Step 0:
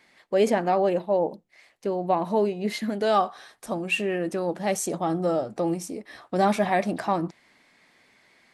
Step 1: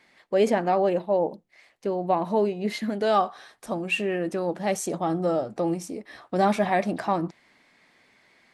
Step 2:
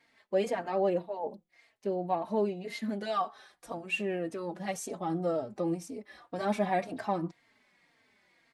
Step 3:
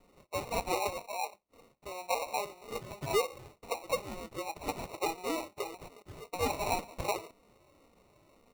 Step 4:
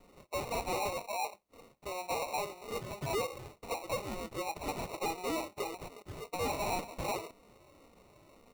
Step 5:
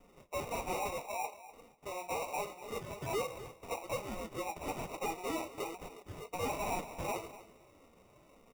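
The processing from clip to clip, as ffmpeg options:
-af "highshelf=f=7.1k:g=-5"
-filter_complex "[0:a]asplit=2[a][b];[b]adelay=3.8,afreqshift=-1.9[c];[a][c]amix=inputs=2:normalize=1,volume=-4.5dB"
-af "highpass=f=1.1k:t=q:w=3.7,acrusher=samples=27:mix=1:aa=0.000001,alimiter=limit=-22.5dB:level=0:latency=1:release=262,volume=1dB"
-af "asoftclip=type=tanh:threshold=-33.5dB,volume=3.5dB"
-af "flanger=delay=3.9:depth=8.4:regen=-47:speed=1.2:shape=sinusoidal,asuperstop=centerf=4200:order=8:qfactor=7,aecho=1:1:247|494:0.168|0.0285,volume=2dB"

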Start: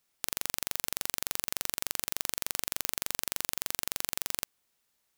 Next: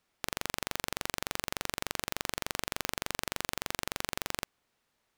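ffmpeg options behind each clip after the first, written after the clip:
-af "lowpass=f=2.1k:p=1,volume=6dB"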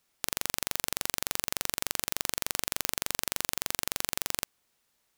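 -af "highshelf=f=4.7k:g=11.5,volume=-1.5dB"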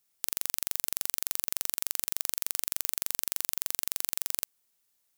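-af "crystalizer=i=2:c=0,volume=-9.5dB"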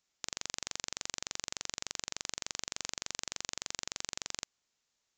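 -af "aresample=16000,aresample=44100"

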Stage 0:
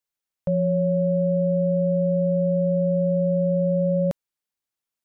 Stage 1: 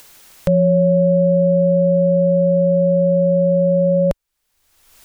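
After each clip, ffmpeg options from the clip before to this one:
-af "asubboost=boost=9:cutoff=59,acompressor=mode=upward:threshold=-28dB:ratio=2.5,volume=8.5dB"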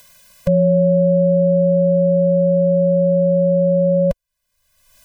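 -af "afftfilt=real='re*eq(mod(floor(b*sr/1024/240),2),0)':imag='im*eq(mod(floor(b*sr/1024/240),2),0)':win_size=1024:overlap=0.75"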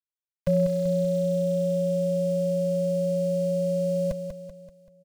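-af "aeval=exprs='val(0)*gte(abs(val(0)),0.0299)':c=same,aecho=1:1:192|384|576|768|960:0.422|0.198|0.0932|0.0438|0.0206,volume=-7.5dB"

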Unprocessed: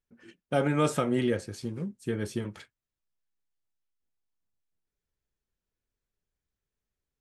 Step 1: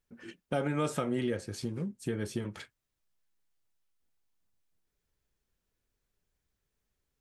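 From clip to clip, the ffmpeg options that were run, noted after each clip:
-af "acompressor=threshold=-42dB:ratio=2,volume=5.5dB"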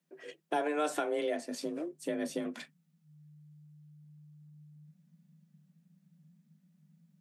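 -af "asubboost=boost=11:cutoff=63,afreqshift=150"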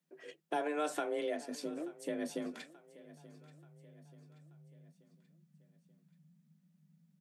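-af "aecho=1:1:882|1764|2646|3528:0.106|0.0519|0.0254|0.0125,volume=-3.5dB"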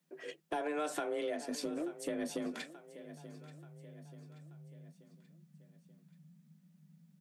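-af "acompressor=threshold=-39dB:ratio=3,asoftclip=type=tanh:threshold=-31dB,volume=5.5dB"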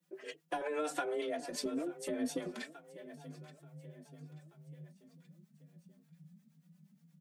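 -filter_complex "[0:a]acrossover=split=500[a][b];[a]aeval=exprs='val(0)*(1-0.7/2+0.7/2*cos(2*PI*8.5*n/s))':c=same[c];[b]aeval=exprs='val(0)*(1-0.7/2-0.7/2*cos(2*PI*8.5*n/s))':c=same[d];[c][d]amix=inputs=2:normalize=0,asplit=2[e][f];[f]adelay=3.7,afreqshift=2.1[g];[e][g]amix=inputs=2:normalize=1,volume=6.5dB"

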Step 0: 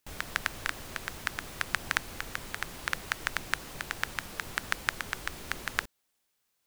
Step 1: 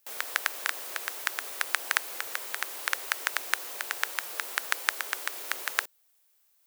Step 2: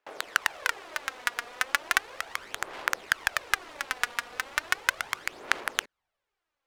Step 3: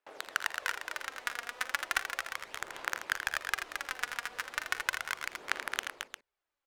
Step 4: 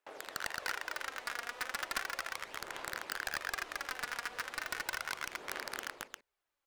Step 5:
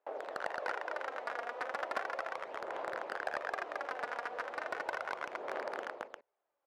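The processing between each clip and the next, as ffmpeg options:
-af "highpass=f=410:w=0.5412,highpass=f=410:w=1.3066,highshelf=f=10k:g=12,volume=2dB"
-af "aphaser=in_gain=1:out_gain=1:delay=4.2:decay=0.55:speed=0.36:type=sinusoidal,adynamicsmooth=sensitivity=6:basefreq=1.9k,asubboost=boost=3.5:cutoff=210,volume=1.5dB"
-af "aecho=1:1:43|56|82|220|352:0.141|0.119|0.355|0.501|0.299,volume=-7dB"
-af "aeval=exprs='0.0562*(abs(mod(val(0)/0.0562+3,4)-2)-1)':c=same,volume=1dB"
-af "bandpass=f=600:t=q:w=1.8:csg=0,volume=11dB"

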